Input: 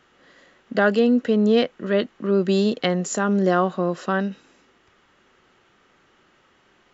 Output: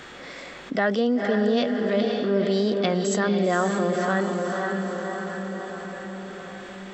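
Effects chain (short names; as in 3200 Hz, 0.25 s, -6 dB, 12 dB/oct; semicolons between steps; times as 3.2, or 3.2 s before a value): formant shift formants +2 st; diffused feedback echo 0.507 s, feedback 46%, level -5.5 dB; fast leveller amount 50%; gain -5.5 dB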